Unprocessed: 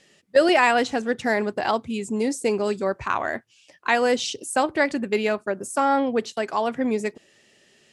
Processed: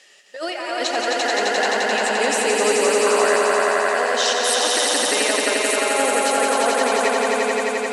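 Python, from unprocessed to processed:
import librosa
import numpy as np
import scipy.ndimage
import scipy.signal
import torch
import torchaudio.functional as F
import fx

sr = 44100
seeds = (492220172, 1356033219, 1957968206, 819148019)

y = scipy.signal.sosfilt(scipy.signal.butter(2, 660.0, 'highpass', fs=sr, output='sos'), x)
y = fx.over_compress(y, sr, threshold_db=-29.0, ratio=-1.0)
y = fx.echo_swell(y, sr, ms=87, loudest=5, wet_db=-3.0)
y = y * 10.0 ** (4.0 / 20.0)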